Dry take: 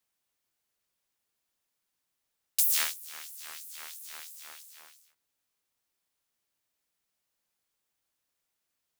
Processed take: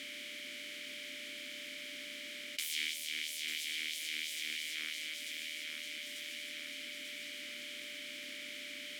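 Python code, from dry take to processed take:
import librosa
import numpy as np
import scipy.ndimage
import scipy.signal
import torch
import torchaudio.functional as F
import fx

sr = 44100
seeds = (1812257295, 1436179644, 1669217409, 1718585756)

y = fx.bin_compress(x, sr, power=0.6)
y = fx.peak_eq(y, sr, hz=1200.0, db=-11.0, octaves=0.92, at=(2.67, 4.75))
y = y + 10.0 ** (-64.0 / 20.0) * np.sin(2.0 * np.pi * 590.0 * np.arange(len(y)) / sr)
y = fx.vowel_filter(y, sr, vowel='i')
y = fx.echo_feedback(y, sr, ms=893, feedback_pct=48, wet_db=-12)
y = fx.env_flatten(y, sr, amount_pct=70)
y = y * 10.0 ** (8.5 / 20.0)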